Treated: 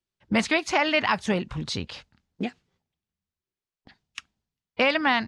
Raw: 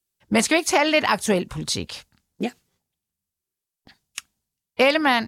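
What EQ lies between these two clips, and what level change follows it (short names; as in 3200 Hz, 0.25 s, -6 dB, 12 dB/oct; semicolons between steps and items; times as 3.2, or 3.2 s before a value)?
dynamic EQ 430 Hz, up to -6 dB, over -33 dBFS, Q 0.87; tape spacing loss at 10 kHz 30 dB; high shelf 2200 Hz +9.5 dB; 0.0 dB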